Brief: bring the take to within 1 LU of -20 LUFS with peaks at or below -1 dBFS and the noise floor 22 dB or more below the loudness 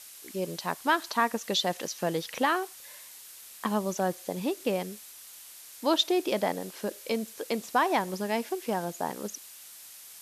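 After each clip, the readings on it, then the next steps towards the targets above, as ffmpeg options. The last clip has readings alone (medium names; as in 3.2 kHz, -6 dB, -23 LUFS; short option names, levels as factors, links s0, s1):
noise floor -48 dBFS; noise floor target -52 dBFS; loudness -30.0 LUFS; peak level -12.0 dBFS; loudness target -20.0 LUFS
-> -af "afftdn=nr=6:nf=-48"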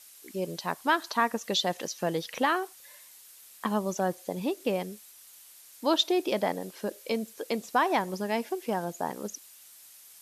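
noise floor -53 dBFS; loudness -30.0 LUFS; peak level -12.0 dBFS; loudness target -20.0 LUFS
-> -af "volume=3.16"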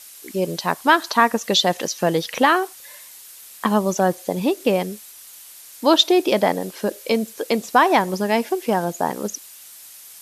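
loudness -20.0 LUFS; peak level -2.0 dBFS; noise floor -43 dBFS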